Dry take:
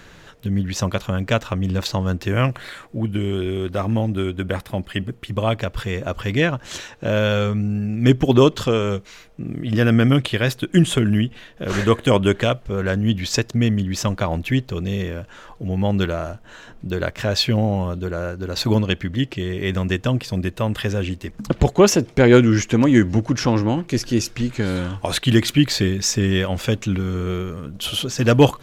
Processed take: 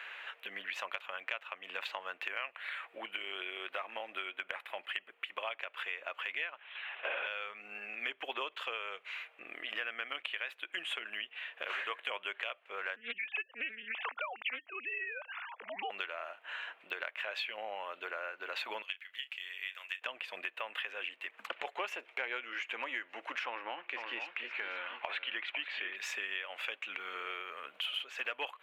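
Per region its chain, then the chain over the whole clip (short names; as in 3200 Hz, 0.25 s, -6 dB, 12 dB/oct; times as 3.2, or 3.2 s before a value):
6.57–7.27 zero-crossing step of -22.5 dBFS + gate -23 dBFS, range -16 dB + LPC vocoder at 8 kHz whisper
12.96–15.9 sine-wave speech + Doppler distortion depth 0.26 ms
18.82–20.02 differentiator + doubler 31 ms -13.5 dB
23.46–25.96 LPF 3200 Hz + echo 0.5 s -9.5 dB
whole clip: Bessel high-pass 970 Hz, order 4; resonant high shelf 3800 Hz -13.5 dB, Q 3; compressor 5:1, threshold -37 dBFS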